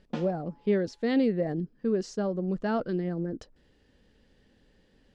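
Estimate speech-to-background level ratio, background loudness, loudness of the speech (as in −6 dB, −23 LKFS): 13.0 dB, −42.5 LKFS, −29.5 LKFS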